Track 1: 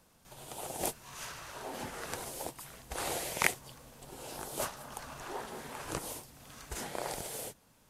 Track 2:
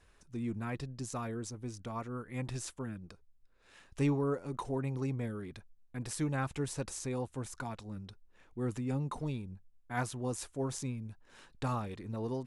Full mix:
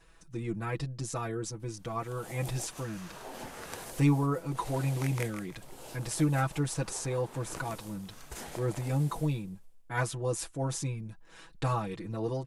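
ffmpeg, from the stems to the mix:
ffmpeg -i stem1.wav -i stem2.wav -filter_complex "[0:a]adelay=1600,volume=-2.5dB,asplit=2[link_01][link_02];[link_02]volume=-9dB[link_03];[1:a]aecho=1:1:6.1:0.87,volume=2.5dB,asplit=2[link_04][link_05];[link_05]apad=whole_len=418878[link_06];[link_01][link_06]sidechaincompress=threshold=-41dB:ratio=8:attack=16:release=167[link_07];[link_03]aecho=0:1:161|322|483|644|805:1|0.36|0.13|0.0467|0.0168[link_08];[link_07][link_04][link_08]amix=inputs=3:normalize=0" out.wav

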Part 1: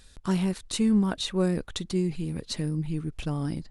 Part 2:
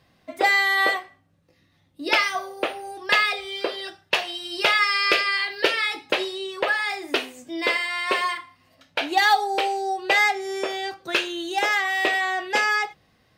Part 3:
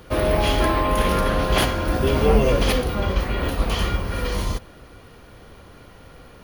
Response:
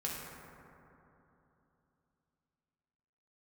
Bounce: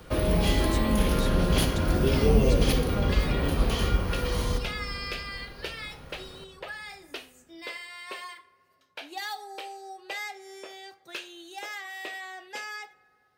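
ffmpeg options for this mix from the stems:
-filter_complex "[0:a]volume=-7.5dB[link_01];[1:a]aemphasis=mode=production:type=cd,volume=-17dB,asplit=2[link_02][link_03];[link_03]volume=-21.5dB[link_04];[2:a]volume=-5.5dB,asplit=2[link_05][link_06];[link_06]volume=-7dB[link_07];[3:a]atrim=start_sample=2205[link_08];[link_04][link_07]amix=inputs=2:normalize=0[link_09];[link_09][link_08]afir=irnorm=-1:irlink=0[link_10];[link_01][link_02][link_05][link_10]amix=inputs=4:normalize=0,acrossover=split=470|3000[link_11][link_12][link_13];[link_12]acompressor=threshold=-33dB:ratio=6[link_14];[link_11][link_14][link_13]amix=inputs=3:normalize=0"

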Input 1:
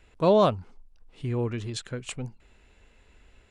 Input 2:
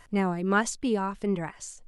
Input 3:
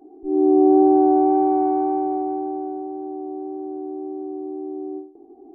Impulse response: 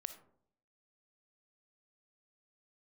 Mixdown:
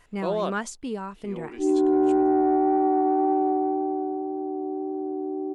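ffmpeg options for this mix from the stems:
-filter_complex "[0:a]highpass=frequency=250:width=0.5412,highpass=frequency=250:width=1.3066,volume=-7dB[link_01];[1:a]acontrast=70,volume=-11.5dB[link_02];[2:a]asoftclip=type=tanh:threshold=-7dB,adelay=1350,volume=0.5dB[link_03];[link_01][link_02][link_03]amix=inputs=3:normalize=0,alimiter=limit=-14.5dB:level=0:latency=1"

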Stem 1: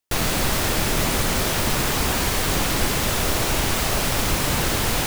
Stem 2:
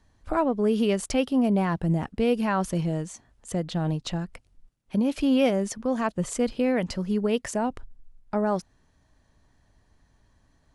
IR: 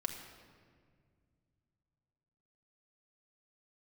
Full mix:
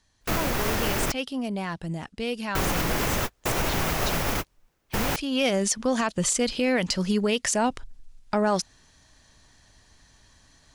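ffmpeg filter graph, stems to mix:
-filter_complex "[0:a]bass=frequency=250:gain=8,treble=frequency=4000:gain=-13,acrossover=split=290[link_01][link_02];[link_01]acompressor=threshold=-25dB:ratio=6[link_03];[link_03][link_02]amix=inputs=2:normalize=0,aexciter=amount=1.9:drive=6.3:freq=5300,adelay=100,volume=0dB,asplit=3[link_04][link_05][link_06];[link_04]atrim=end=1.12,asetpts=PTS-STARTPTS,afade=type=out:start_time=1.116:duration=0.004:curve=hsin[link_07];[link_05]atrim=start=1.12:end=2.55,asetpts=PTS-STARTPTS,volume=0[link_08];[link_06]atrim=start=2.55,asetpts=PTS-STARTPTS,afade=type=in:duration=0.004:curve=hsin[link_09];[link_07][link_08][link_09]concat=n=3:v=0:a=1[link_10];[1:a]equalizer=frequency=5500:width=0.33:gain=14.5,acontrast=52,volume=-3dB,afade=type=in:start_time=5.31:duration=0.31:silence=0.281838,asplit=2[link_11][link_12];[link_12]apad=whole_len=227579[link_13];[link_10][link_13]sidechaingate=range=-50dB:threshold=-48dB:ratio=16:detection=peak[link_14];[link_14][link_11]amix=inputs=2:normalize=0,alimiter=limit=-15dB:level=0:latency=1:release=106"

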